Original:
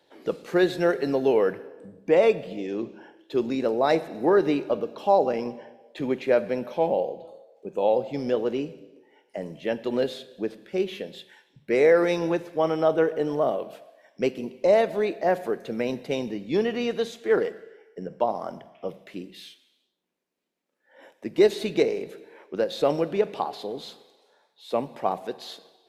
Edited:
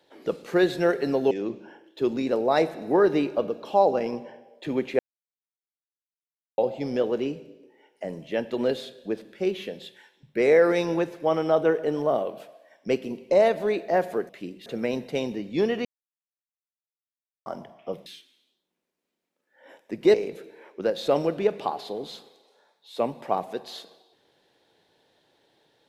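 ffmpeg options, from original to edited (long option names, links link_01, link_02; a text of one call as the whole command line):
ffmpeg -i in.wav -filter_complex "[0:a]asplit=10[link_01][link_02][link_03][link_04][link_05][link_06][link_07][link_08][link_09][link_10];[link_01]atrim=end=1.312[link_11];[link_02]atrim=start=2.638:end=6.32,asetpts=PTS-STARTPTS,afade=type=out:start_time=3.678:duration=0.004:curve=hsin[link_12];[link_03]atrim=start=6.32:end=7.91,asetpts=PTS-STARTPTS,volume=0[link_13];[link_04]atrim=start=7.91:end=15.622,asetpts=PTS-STARTPTS,afade=type=in:duration=0.004:curve=hsin[link_14];[link_05]atrim=start=19.018:end=19.392[link_15];[link_06]atrim=start=15.618:end=16.81,asetpts=PTS-STARTPTS,afade=type=out:start_time=1.188:duration=0.004:curve=hsin[link_16];[link_07]atrim=start=16.81:end=18.42,asetpts=PTS-STARTPTS,volume=0[link_17];[link_08]atrim=start=18.42:end=19.022,asetpts=PTS-STARTPTS,afade=type=in:duration=0.004:curve=hsin[link_18];[link_09]atrim=start=19.388:end=21.472[link_19];[link_10]atrim=start=21.878[link_20];[link_12][link_13][link_14]concat=n=3:v=0:a=1[link_21];[link_11][link_21]acrossfade=duration=0.004:curve1=hsin:curve2=hsin[link_22];[link_22][link_15]acrossfade=duration=0.004:curve1=hsin:curve2=hsin[link_23];[link_16][link_17][link_18]concat=n=3:v=0:a=1[link_24];[link_23][link_24]acrossfade=duration=0.004:curve1=hsin:curve2=hsin[link_25];[link_25][link_19]acrossfade=duration=0.004:curve1=hsin:curve2=hsin[link_26];[link_26][link_20]acrossfade=duration=0.004:curve1=hsin:curve2=hsin" out.wav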